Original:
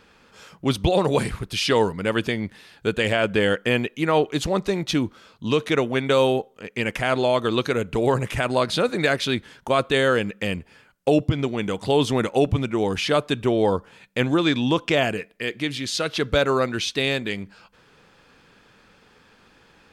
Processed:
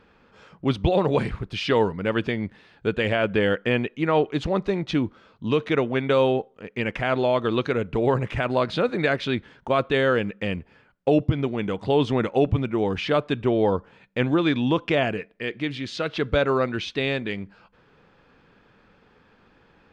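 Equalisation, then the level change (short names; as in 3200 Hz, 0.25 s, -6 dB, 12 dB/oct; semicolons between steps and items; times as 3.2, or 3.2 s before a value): dynamic EQ 2700 Hz, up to +3 dB, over -34 dBFS, Q 0.74; tape spacing loss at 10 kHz 24 dB; 0.0 dB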